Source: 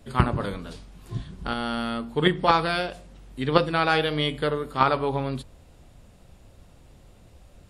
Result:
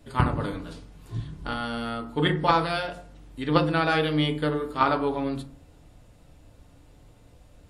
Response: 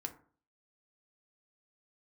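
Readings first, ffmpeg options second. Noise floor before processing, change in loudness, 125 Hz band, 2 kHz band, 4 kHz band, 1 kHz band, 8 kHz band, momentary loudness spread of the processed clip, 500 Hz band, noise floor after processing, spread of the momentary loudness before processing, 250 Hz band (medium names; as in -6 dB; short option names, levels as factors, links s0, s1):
-53 dBFS, -1.0 dB, +0.5 dB, -1.5 dB, -2.5 dB, -1.5 dB, no reading, 15 LU, -2.0 dB, -54 dBFS, 15 LU, +1.0 dB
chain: -filter_complex "[1:a]atrim=start_sample=2205[s0];[0:a][s0]afir=irnorm=-1:irlink=0"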